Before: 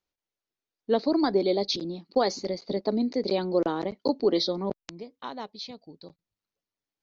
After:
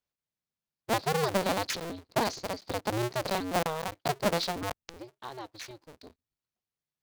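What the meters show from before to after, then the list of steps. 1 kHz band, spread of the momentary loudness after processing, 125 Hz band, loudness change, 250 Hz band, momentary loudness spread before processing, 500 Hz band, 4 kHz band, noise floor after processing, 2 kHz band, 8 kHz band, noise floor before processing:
+2.0 dB, 16 LU, +3.0 dB, −4.0 dB, −8.5 dB, 16 LU, −6.0 dB, −3.0 dB, below −85 dBFS, +7.0 dB, can't be measured, below −85 dBFS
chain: sub-harmonics by changed cycles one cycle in 2, inverted
level −4.5 dB

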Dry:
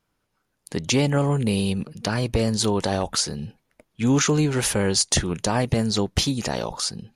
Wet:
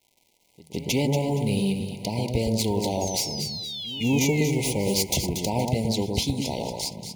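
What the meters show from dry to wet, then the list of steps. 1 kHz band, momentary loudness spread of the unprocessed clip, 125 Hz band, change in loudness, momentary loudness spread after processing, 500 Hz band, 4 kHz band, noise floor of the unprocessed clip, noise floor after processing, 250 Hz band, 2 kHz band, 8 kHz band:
−3.5 dB, 8 LU, −2.5 dB, −2.5 dB, 7 LU, −2.0 dB, −2.5 dB, −74 dBFS, −66 dBFS, −2.0 dB, −4.0 dB, −4.0 dB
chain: stylus tracing distortion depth 0.042 ms
high-pass filter 48 Hz
noise gate −38 dBFS, range −8 dB
surface crackle 320 per second −44 dBFS
sound drawn into the spectrogram fall, 0:03.01–0:04.95, 1,300–6,700 Hz −31 dBFS
echo ahead of the sound 164 ms −19 dB
in parallel at −6 dB: floating-point word with a short mantissa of 2 bits
on the sum: brick-wall band-stop 1,000–2,000 Hz
on a send: delay that swaps between a low-pass and a high-pass 117 ms, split 1,500 Hz, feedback 55%, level −3 dB
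on the sum: level −7.5 dB

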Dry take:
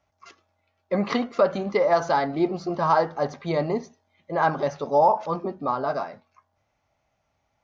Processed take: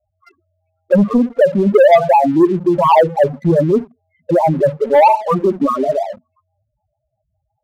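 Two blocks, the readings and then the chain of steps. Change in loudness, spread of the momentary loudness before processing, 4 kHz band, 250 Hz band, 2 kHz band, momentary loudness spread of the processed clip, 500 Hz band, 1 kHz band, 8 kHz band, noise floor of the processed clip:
+11.0 dB, 9 LU, +4.5 dB, +13.5 dB, +6.0 dB, 7 LU, +11.5 dB, +9.0 dB, can't be measured, −73 dBFS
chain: in parallel at 0 dB: downward compressor 10 to 1, threshold −29 dBFS, peak gain reduction 15.5 dB
on the sum: rotating-speaker cabinet horn 0.9 Hz, later 5.5 Hz, at 0:05.97
spectral peaks only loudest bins 4
leveller curve on the samples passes 2
level +7.5 dB

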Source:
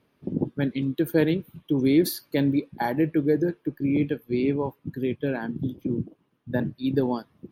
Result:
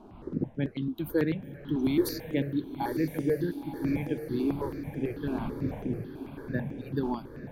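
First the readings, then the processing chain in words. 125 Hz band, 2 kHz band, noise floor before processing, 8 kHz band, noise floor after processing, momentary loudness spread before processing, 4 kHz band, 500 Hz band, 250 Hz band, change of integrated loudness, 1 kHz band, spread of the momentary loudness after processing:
−4.5 dB, −6.0 dB, −69 dBFS, −6.0 dB, −47 dBFS, 8 LU, −6.0 dB, −6.0 dB, −5.5 dB, −5.5 dB, −4.5 dB, 7 LU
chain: wind on the microphone 410 Hz −39 dBFS
feedback delay with all-pass diffusion 1,041 ms, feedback 52%, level −9.5 dB
step-sequenced phaser 9.1 Hz 520–4,300 Hz
level −3.5 dB

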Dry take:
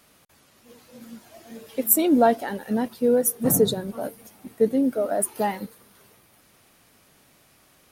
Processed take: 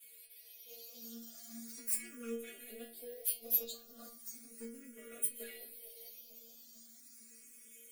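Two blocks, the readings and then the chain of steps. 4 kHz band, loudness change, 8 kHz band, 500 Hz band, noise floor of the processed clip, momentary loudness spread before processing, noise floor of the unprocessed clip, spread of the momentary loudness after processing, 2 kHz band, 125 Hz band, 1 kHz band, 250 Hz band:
−14.0 dB, −17.5 dB, −12.5 dB, −26.0 dB, −59 dBFS, 16 LU, −59 dBFS, 19 LU, −17.0 dB, below −30 dB, −35.5 dB, −26.5 dB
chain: lower of the sound and its delayed copy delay 8 ms
high-shelf EQ 7,000 Hz −4.5 dB
phaser with its sweep stopped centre 390 Hz, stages 4
in parallel at +2 dB: brickwall limiter −19 dBFS, peak gain reduction 11.5 dB
on the sum: downward compressor 2.5 to 1, threshold −39 dBFS, peak gain reduction 16.5 dB
floating-point word with a short mantissa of 4 bits
RIAA equalisation recording
stiff-string resonator 230 Hz, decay 0.47 s, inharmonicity 0.002
on a send: bucket-brigade delay 448 ms, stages 2,048, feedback 72%, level −11.5 dB
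on the sum: frequency shifter mixed with the dry sound +0.37 Hz
level +6.5 dB

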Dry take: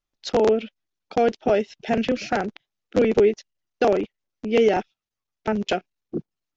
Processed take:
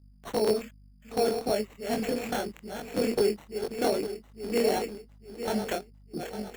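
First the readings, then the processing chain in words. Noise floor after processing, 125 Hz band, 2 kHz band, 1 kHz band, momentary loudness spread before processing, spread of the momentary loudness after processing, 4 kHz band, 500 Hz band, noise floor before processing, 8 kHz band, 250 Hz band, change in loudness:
−56 dBFS, −6.5 dB, −7.5 dB, −7.5 dB, 15 LU, 13 LU, −2.5 dB, −7.0 dB, below −85 dBFS, can't be measured, −6.5 dB, −7.5 dB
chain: feedback delay that plays each chunk backwards 427 ms, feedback 64%, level −8 dB
mains hum 50 Hz, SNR 26 dB
chorus effect 2.5 Hz, delay 18.5 ms, depth 7 ms
decimation without filtering 9×
level −5 dB

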